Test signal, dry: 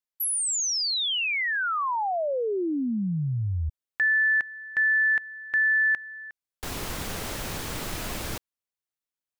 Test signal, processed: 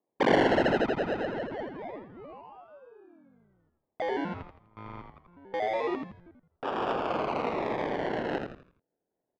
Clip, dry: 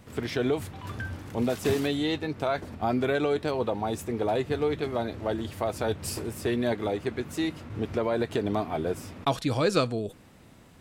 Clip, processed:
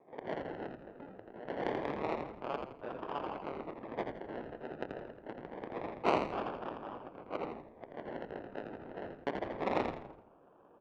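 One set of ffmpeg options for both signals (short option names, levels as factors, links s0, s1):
-filter_complex "[0:a]aderivative,acrusher=samples=30:mix=1:aa=0.000001:lfo=1:lforange=18:lforate=0.26,acontrast=38,aeval=exprs='abs(val(0))':c=same,adynamicsmooth=sensitivity=5:basefreq=960,highpass=350,lowpass=2900,asplit=2[s0][s1];[s1]asplit=5[s2][s3][s4][s5][s6];[s2]adelay=83,afreqshift=-85,volume=0.562[s7];[s3]adelay=166,afreqshift=-170,volume=0.209[s8];[s4]adelay=249,afreqshift=-255,volume=0.0767[s9];[s5]adelay=332,afreqshift=-340,volume=0.0285[s10];[s6]adelay=415,afreqshift=-425,volume=0.0106[s11];[s7][s8][s9][s10][s11]amix=inputs=5:normalize=0[s12];[s0][s12]amix=inputs=2:normalize=0,volume=2.37"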